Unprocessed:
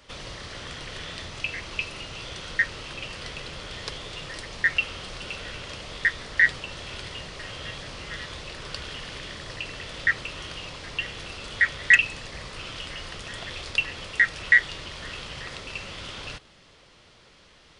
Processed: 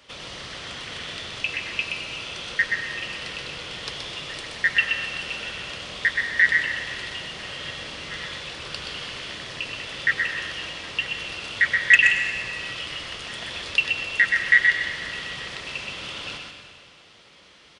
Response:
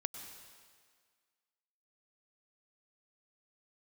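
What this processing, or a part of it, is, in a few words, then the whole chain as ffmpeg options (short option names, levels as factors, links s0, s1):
PA in a hall: -filter_complex "[0:a]highpass=f=130:p=1,equalizer=f=2900:t=o:w=0.86:g=4,aecho=1:1:125:0.562[s0];[1:a]atrim=start_sample=2205[s1];[s0][s1]afir=irnorm=-1:irlink=0,volume=1.12"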